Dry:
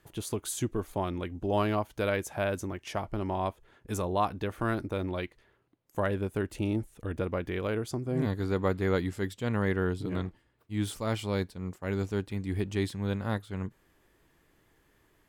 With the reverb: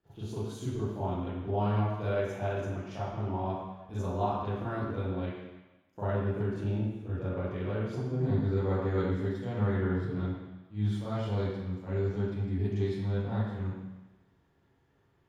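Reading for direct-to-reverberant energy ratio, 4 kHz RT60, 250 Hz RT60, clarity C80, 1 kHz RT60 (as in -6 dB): -12.0 dB, 1.2 s, 1.0 s, 1.0 dB, 1.2 s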